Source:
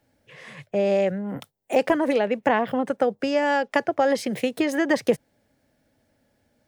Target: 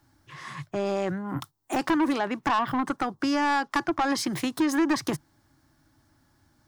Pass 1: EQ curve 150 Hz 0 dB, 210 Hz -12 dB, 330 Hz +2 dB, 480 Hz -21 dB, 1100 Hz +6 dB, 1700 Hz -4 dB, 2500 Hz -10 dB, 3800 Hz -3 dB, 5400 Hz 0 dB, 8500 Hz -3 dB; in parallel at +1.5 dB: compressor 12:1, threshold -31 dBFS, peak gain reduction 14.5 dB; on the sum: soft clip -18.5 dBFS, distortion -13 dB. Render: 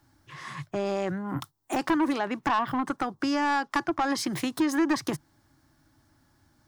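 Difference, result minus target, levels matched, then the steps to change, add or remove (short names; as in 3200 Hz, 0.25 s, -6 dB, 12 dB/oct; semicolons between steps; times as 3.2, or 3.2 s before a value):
compressor: peak gain reduction +6.5 dB
change: compressor 12:1, threshold -24 dBFS, peak gain reduction 8 dB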